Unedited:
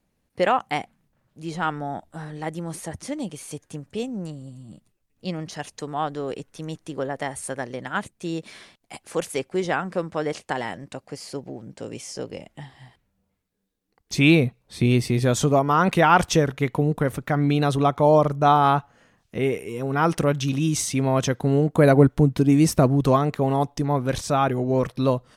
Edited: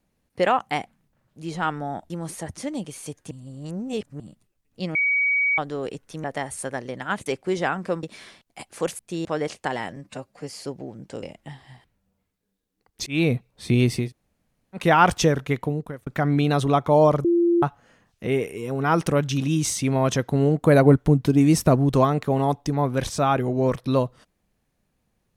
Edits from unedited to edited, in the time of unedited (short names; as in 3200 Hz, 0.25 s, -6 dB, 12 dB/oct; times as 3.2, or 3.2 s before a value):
2.1–2.55 cut
3.76–4.65 reverse
5.4–6.03 bleep 2260 Hz -18 dBFS
6.69–7.09 cut
8.11–8.37 swap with 9.33–10.1
10.81–11.16 stretch 1.5×
11.9–12.34 cut
14.18–14.45 fade in
15.16–15.92 room tone, crossfade 0.16 s
16.6–17.18 fade out
18.36–18.74 bleep 343 Hz -15.5 dBFS